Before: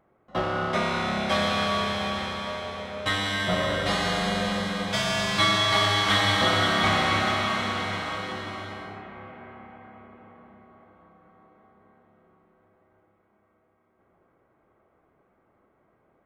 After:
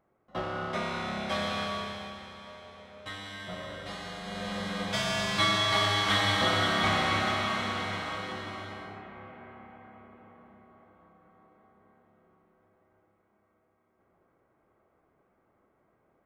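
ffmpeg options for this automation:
-af "volume=1.5,afade=t=out:st=1.58:d=0.6:silence=0.421697,afade=t=in:st=4.23:d=0.59:silence=0.298538"

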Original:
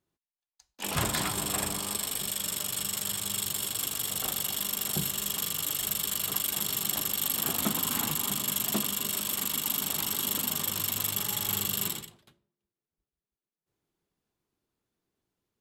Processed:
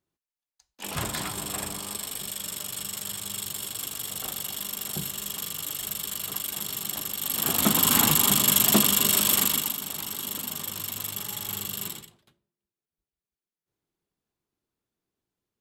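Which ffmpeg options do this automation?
-af "volume=2.99,afade=t=in:st=7.21:d=0.74:silence=0.266073,afade=t=out:st=9.36:d=0.4:silence=0.237137"

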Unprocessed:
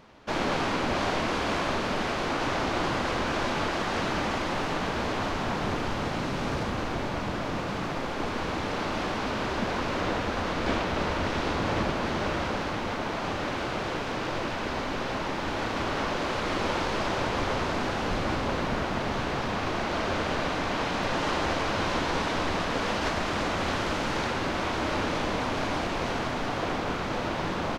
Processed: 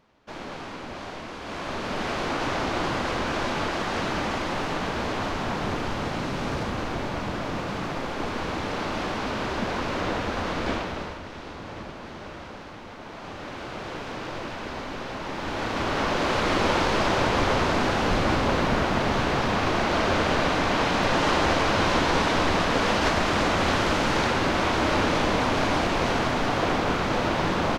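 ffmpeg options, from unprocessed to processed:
-af "volume=7.08,afade=t=in:st=1.4:d=0.75:silence=0.298538,afade=t=out:st=10.59:d=0.62:silence=0.266073,afade=t=in:st=12.95:d=1.1:silence=0.421697,afade=t=in:st=15.18:d=1.18:silence=0.375837"

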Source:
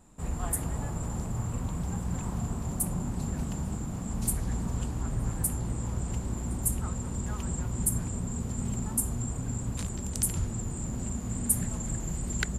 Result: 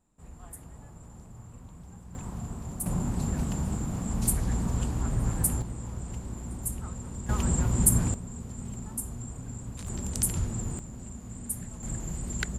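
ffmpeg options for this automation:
-af "asetnsamples=n=441:p=0,asendcmd='2.15 volume volume -4.5dB;2.86 volume volume 3dB;5.62 volume volume -4.5dB;7.29 volume volume 6.5dB;8.14 volume volume -6dB;9.87 volume volume 1dB;10.79 volume volume -8dB;11.83 volume volume -1.5dB',volume=0.188"

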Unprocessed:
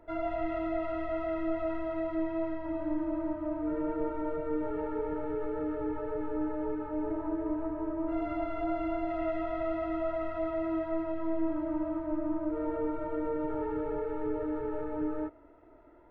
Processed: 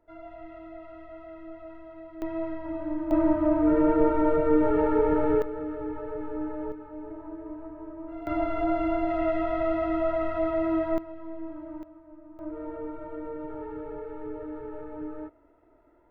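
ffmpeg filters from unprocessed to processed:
-af "asetnsamples=n=441:p=0,asendcmd='2.22 volume volume 1dB;3.11 volume volume 11dB;5.42 volume volume 0dB;6.72 volume volume -6.5dB;8.27 volume volume 6dB;10.98 volume volume -7dB;11.83 volume volume -16.5dB;12.39 volume volume -4dB',volume=0.282"

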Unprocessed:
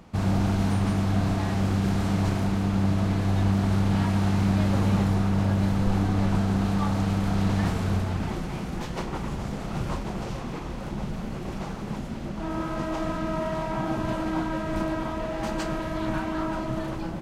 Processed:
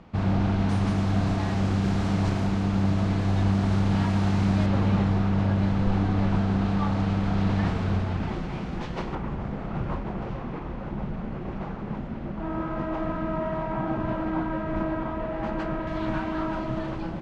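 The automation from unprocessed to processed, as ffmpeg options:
-af "asetnsamples=n=441:p=0,asendcmd='0.69 lowpass f 6700;4.66 lowpass f 4000;9.15 lowpass f 2100;15.87 lowpass f 4000',lowpass=3700"

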